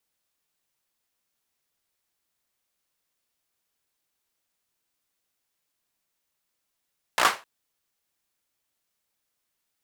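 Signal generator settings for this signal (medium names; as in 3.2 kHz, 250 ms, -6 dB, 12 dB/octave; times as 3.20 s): hand clap length 0.26 s, bursts 5, apart 17 ms, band 1.1 kHz, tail 0.27 s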